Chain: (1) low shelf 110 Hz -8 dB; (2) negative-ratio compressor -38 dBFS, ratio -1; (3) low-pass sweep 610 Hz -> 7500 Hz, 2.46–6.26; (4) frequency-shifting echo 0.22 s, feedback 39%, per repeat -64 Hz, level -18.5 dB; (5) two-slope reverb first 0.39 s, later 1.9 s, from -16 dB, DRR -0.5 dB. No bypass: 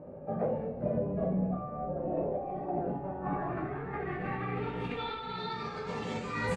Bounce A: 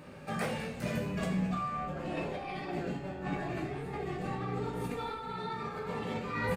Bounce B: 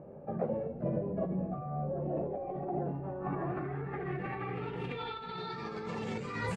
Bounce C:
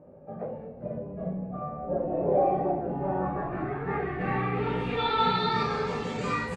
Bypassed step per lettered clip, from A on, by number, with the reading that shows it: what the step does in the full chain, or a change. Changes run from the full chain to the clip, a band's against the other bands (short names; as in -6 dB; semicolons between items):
3, loudness change -1.5 LU; 5, 125 Hz band +3.0 dB; 2, momentary loudness spread change +8 LU